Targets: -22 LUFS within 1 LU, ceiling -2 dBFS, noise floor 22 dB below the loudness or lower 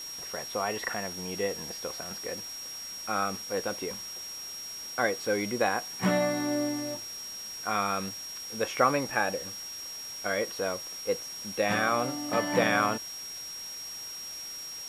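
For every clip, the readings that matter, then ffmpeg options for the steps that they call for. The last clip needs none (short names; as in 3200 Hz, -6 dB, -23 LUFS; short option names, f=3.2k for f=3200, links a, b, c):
steady tone 5600 Hz; tone level -38 dBFS; noise floor -40 dBFS; noise floor target -53 dBFS; loudness -31.0 LUFS; peak -8.5 dBFS; loudness target -22.0 LUFS
-> -af "bandreject=f=5.6k:w=30"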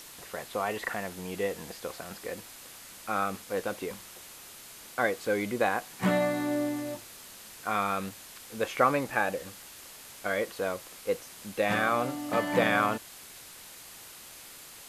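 steady tone none; noise floor -48 dBFS; noise floor target -53 dBFS
-> -af "afftdn=nr=6:nf=-48"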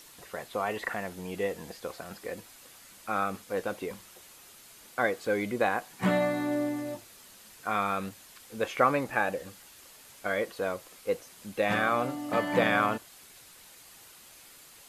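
noise floor -53 dBFS; loudness -30.5 LUFS; peak -8.5 dBFS; loudness target -22.0 LUFS
-> -af "volume=8.5dB,alimiter=limit=-2dB:level=0:latency=1"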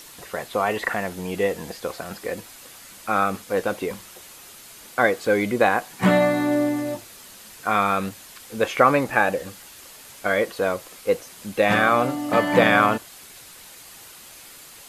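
loudness -22.5 LUFS; peak -2.0 dBFS; noise floor -45 dBFS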